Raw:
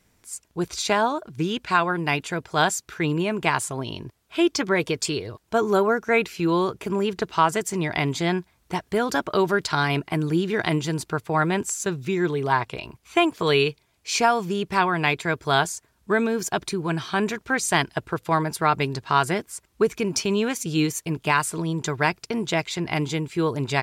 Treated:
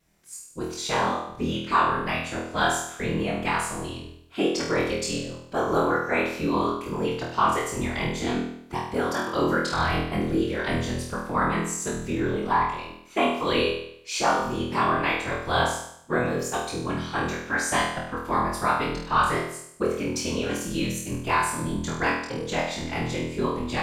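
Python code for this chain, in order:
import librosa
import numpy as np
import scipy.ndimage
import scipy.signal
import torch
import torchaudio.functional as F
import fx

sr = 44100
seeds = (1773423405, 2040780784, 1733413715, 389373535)

y = fx.dynamic_eq(x, sr, hz=1100.0, q=6.2, threshold_db=-39.0, ratio=4.0, max_db=6)
y = fx.whisperise(y, sr, seeds[0])
y = fx.room_flutter(y, sr, wall_m=4.2, rt60_s=0.69)
y = F.gain(torch.from_numpy(y), -7.0).numpy()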